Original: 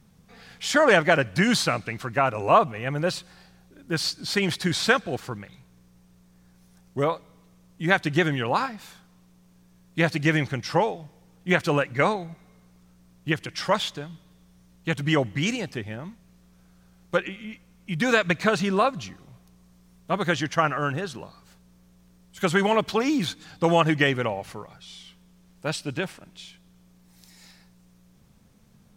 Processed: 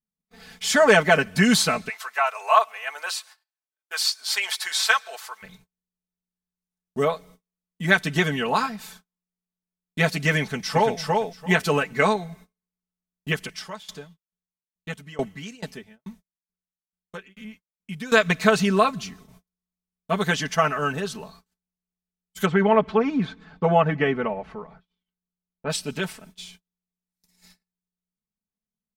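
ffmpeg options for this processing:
-filter_complex "[0:a]asplit=3[a][b][c];[a]afade=t=out:st=1.88:d=0.02[d];[b]highpass=f=740:w=0.5412,highpass=f=740:w=1.3066,afade=t=in:st=1.88:d=0.02,afade=t=out:st=5.42:d=0.02[e];[c]afade=t=in:st=5.42:d=0.02[f];[d][e][f]amix=inputs=3:normalize=0,asplit=2[g][h];[h]afade=t=in:st=10.41:d=0.01,afade=t=out:st=10.98:d=0.01,aecho=0:1:340|680|1020:0.749894|0.112484|0.0168726[i];[g][i]amix=inputs=2:normalize=0,asettb=1/sr,asplit=3[j][k][l];[j]atrim=end=13.454[m];[k]atrim=start=13.45:end=18.12,asetpts=PTS-STARTPTS,afade=t=in:d=0.004:c=qsin,afade=t=out:st=4.666:d=0.004:c=qsin,aeval=exprs='val(0)*pow(10,-24*if(lt(mod(2.3*n/s,1),2*abs(2.3)/1000),1-mod(2.3*n/s,1)/(2*abs(2.3)/1000),(mod(2.3*n/s,1)-2*abs(2.3)/1000)/(1-2*abs(2.3)/1000))/20)':c=same[n];[l]atrim=start=18.116[o];[m][n]acrossfade=d=0.004:c1=hsin:c2=qsin[p];[p][o]acrossfade=d=0.004:c1=qsin:c2=hsin,asplit=3[q][r][s];[q]afade=t=out:st=22.45:d=0.02[t];[r]lowpass=1.7k,afade=t=in:st=22.45:d=0.02,afade=t=out:st=25.69:d=0.02[u];[s]afade=t=in:st=25.69:d=0.02[v];[t][u][v]amix=inputs=3:normalize=0,agate=range=-39dB:threshold=-49dB:ratio=16:detection=peak,highshelf=f=7.2k:g=8.5,aecho=1:1:4.6:0.88,volume=-1dB"

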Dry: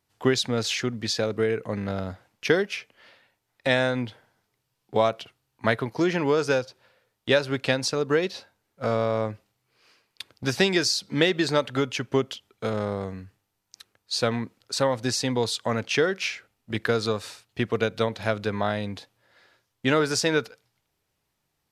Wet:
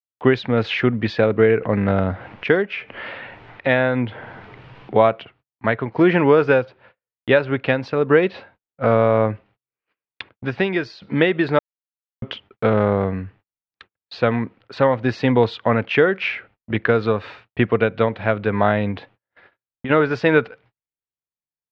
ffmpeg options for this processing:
-filter_complex "[0:a]asettb=1/sr,asplit=3[a][b][c];[a]atrim=end=1.624[d];[b]atrim=start=1.62:end=5,asetpts=PTS-STARTPTS,afade=t=in:d=0.004:c=qsin,afade=t=out:st=3.376:d=0.004:c=qsin,acompressor=mode=upward:threshold=-31dB:ratio=2.5:attack=3.2:release=140:knee=2.83:detection=peak[e];[c]atrim=start=4.996[f];[d][e]acrossfade=d=0.004:c1=hsin:c2=qsin[g];[g][f]acrossfade=d=0.004:c1=qsin:c2=hsin,asplit=3[h][i][j];[h]afade=t=out:st=18.91:d=0.02[k];[i]acompressor=threshold=-32dB:ratio=6:attack=3.2:release=140:knee=1:detection=peak,afade=t=in:st=18.91:d=0.02,afade=t=out:st=19.89:d=0.02[l];[j]afade=t=in:st=19.89:d=0.02[m];[k][l][m]amix=inputs=3:normalize=0,asplit=5[n][o][p][q][r];[n]atrim=end=10.292[s];[o]atrim=start=10.288:end=11.022,asetpts=PTS-STARTPTS,volume=-10dB[t];[p]atrim=start=11.018:end=11.59,asetpts=PTS-STARTPTS,afade=t=out:st=0.568:d=0.004:c=hsin[u];[q]atrim=start=11.59:end=12.22,asetpts=PTS-STARTPTS,volume=0[v];[r]atrim=start=12.22,asetpts=PTS-STARTPTS,afade=t=in:d=0.004:c=hsin[w];[s][t]acrossfade=d=0.004:c1=hsin:c2=hsin[x];[u][v][w]concat=n=3:v=0:a=1[y];[x][y]acrossfade=d=0.004:c1=hsin:c2=hsin,lowpass=f=2.7k:w=0.5412,lowpass=f=2.7k:w=1.3066,agate=range=-39dB:threshold=-58dB:ratio=16:detection=peak,dynaudnorm=f=130:g=3:m=13dB,volume=-1dB"

